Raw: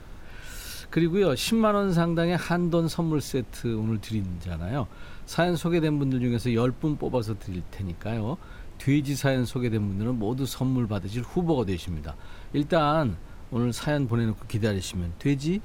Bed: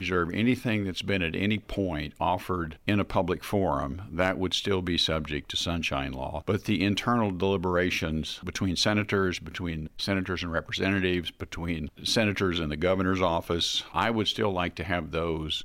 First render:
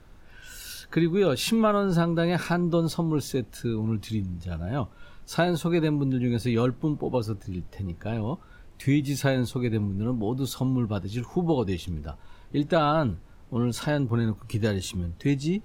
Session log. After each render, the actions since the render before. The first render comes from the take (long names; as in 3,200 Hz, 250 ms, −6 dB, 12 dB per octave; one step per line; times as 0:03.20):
noise reduction from a noise print 8 dB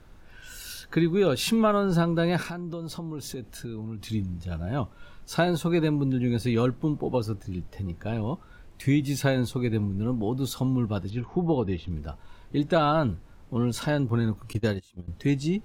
0:02.42–0:04.10: downward compressor 5 to 1, threshold −32 dBFS
0:11.10–0:11.91: high-frequency loss of the air 250 metres
0:14.53–0:15.08: noise gate −27 dBFS, range −24 dB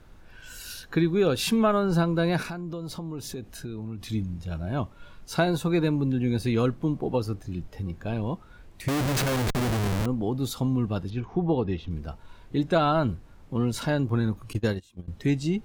0:08.88–0:10.06: comparator with hysteresis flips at −34 dBFS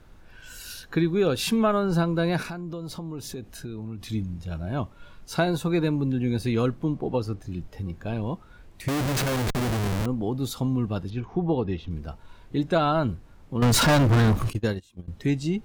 0:06.83–0:07.42: high-shelf EQ 11,000 Hz −10 dB
0:13.62–0:14.50: leveller curve on the samples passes 5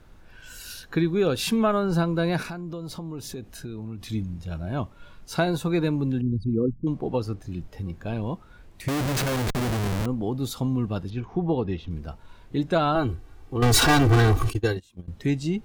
0:06.21–0:06.87: spectral envelope exaggerated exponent 3
0:12.95–0:14.77: comb filter 2.6 ms, depth 89%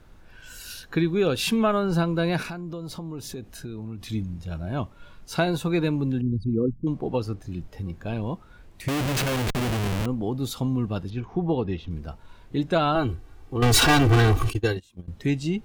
dynamic equaliser 2,800 Hz, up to +4 dB, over −46 dBFS, Q 2.1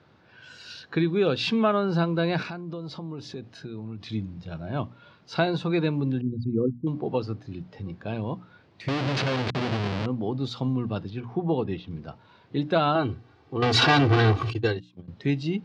Chebyshev band-pass filter 110–4,700 Hz, order 3
mains-hum notches 60/120/180/240/300 Hz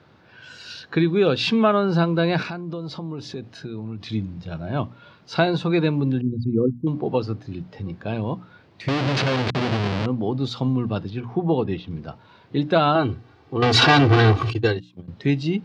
level +4.5 dB